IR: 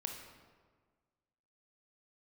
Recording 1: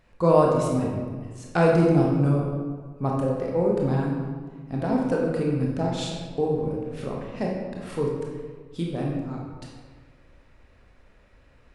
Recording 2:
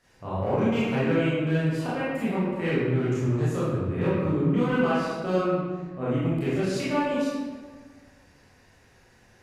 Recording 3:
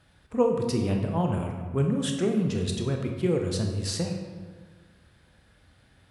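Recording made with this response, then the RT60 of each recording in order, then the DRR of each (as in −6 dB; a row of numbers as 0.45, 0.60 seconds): 3; 1.6, 1.6, 1.6 seconds; −2.5, −10.0, 2.5 decibels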